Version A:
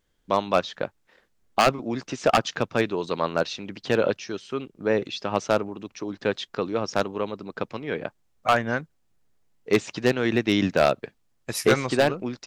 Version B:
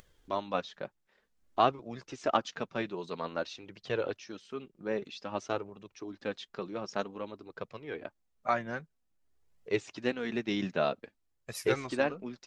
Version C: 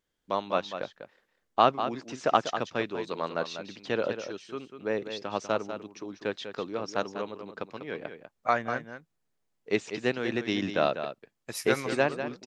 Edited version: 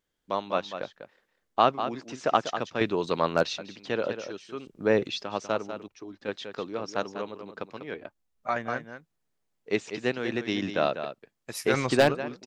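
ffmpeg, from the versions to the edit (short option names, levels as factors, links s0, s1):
-filter_complex "[0:a]asplit=3[s0][s1][s2];[1:a]asplit=2[s3][s4];[2:a]asplit=6[s5][s6][s7][s8][s9][s10];[s5]atrim=end=2.812[s11];[s0]atrim=start=2.808:end=3.582[s12];[s6]atrim=start=3.578:end=4.672[s13];[s1]atrim=start=4.668:end=5.232[s14];[s7]atrim=start=5.228:end=5.882[s15];[s3]atrim=start=5.878:end=6.282[s16];[s8]atrim=start=6.278:end=7.942[s17];[s4]atrim=start=7.938:end=8.562[s18];[s9]atrim=start=8.558:end=11.742[s19];[s2]atrim=start=11.738:end=12.152[s20];[s10]atrim=start=12.148[s21];[s11][s12]acrossfade=d=0.004:c1=hsin:c2=hsin[s22];[s22][s13]acrossfade=d=0.004:c1=hsin:c2=hsin[s23];[s23][s14]acrossfade=d=0.004:c1=hsin:c2=hsin[s24];[s24][s15]acrossfade=d=0.004:c1=hsin:c2=hsin[s25];[s25][s16]acrossfade=d=0.004:c1=hsin:c2=hsin[s26];[s26][s17]acrossfade=d=0.004:c1=hsin:c2=hsin[s27];[s27][s18]acrossfade=d=0.004:c1=hsin:c2=hsin[s28];[s28][s19]acrossfade=d=0.004:c1=hsin:c2=hsin[s29];[s29][s20]acrossfade=d=0.004:c1=hsin:c2=hsin[s30];[s30][s21]acrossfade=d=0.004:c1=hsin:c2=hsin"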